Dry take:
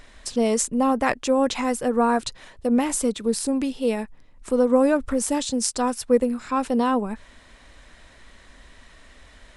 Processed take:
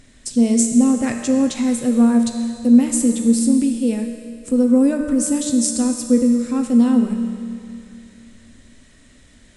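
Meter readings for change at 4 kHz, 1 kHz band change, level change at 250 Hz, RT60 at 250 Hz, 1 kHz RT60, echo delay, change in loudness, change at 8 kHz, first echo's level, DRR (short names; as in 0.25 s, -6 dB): -0.5 dB, -8.5 dB, +9.5 dB, 2.5 s, 2.5 s, none, +5.5 dB, +5.5 dB, none, 3.5 dB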